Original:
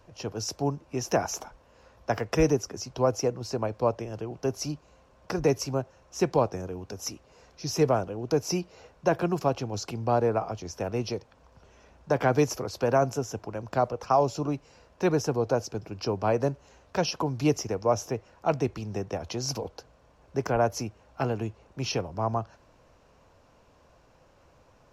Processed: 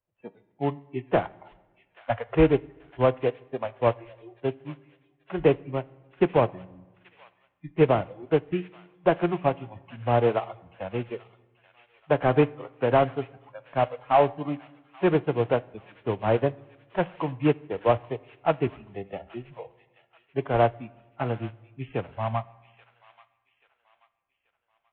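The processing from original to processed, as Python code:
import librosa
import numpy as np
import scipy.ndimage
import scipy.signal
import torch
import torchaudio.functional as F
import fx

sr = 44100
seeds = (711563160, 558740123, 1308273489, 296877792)

y = fx.cvsd(x, sr, bps=16000)
y = fx.noise_reduce_blind(y, sr, reduce_db=27)
y = fx.echo_wet_highpass(y, sr, ms=833, feedback_pct=38, hz=1700.0, wet_db=-8)
y = fx.rev_fdn(y, sr, rt60_s=1.3, lf_ratio=1.2, hf_ratio=0.8, size_ms=51.0, drr_db=12.5)
y = fx.upward_expand(y, sr, threshold_db=-40.0, expansion=1.5)
y = y * 10.0 ** (5.0 / 20.0)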